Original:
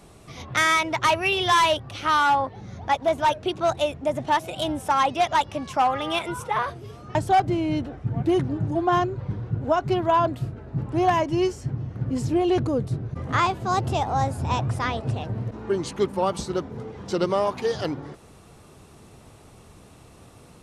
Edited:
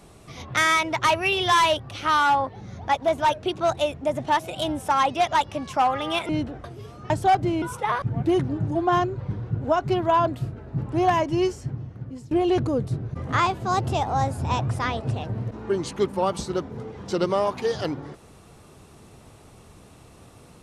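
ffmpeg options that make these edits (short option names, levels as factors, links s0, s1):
-filter_complex "[0:a]asplit=6[s0][s1][s2][s3][s4][s5];[s0]atrim=end=6.292[s6];[s1]atrim=start=7.668:end=8.022[s7];[s2]atrim=start=6.688:end=7.672[s8];[s3]atrim=start=6.288:end=6.692[s9];[s4]atrim=start=8.018:end=12.31,asetpts=PTS-STARTPTS,afade=t=out:st=3.492:d=0.8:silence=0.0891251[s10];[s5]atrim=start=12.31,asetpts=PTS-STARTPTS,afade=t=in:d=0.004:c=hsin:silence=0.0891251[s11];[s6][s7]acrossfade=d=0.004:c1=hsin:c2=hsin[s12];[s12][s8]acrossfade=d=0.004:c1=hsin:c2=hsin[s13];[s13][s9]acrossfade=d=0.004:c1=hsin:c2=hsin[s14];[s10][s11]concat=n=2:v=0:a=1[s15];[s14][s15]acrossfade=d=0.004:c1=hsin:c2=hsin"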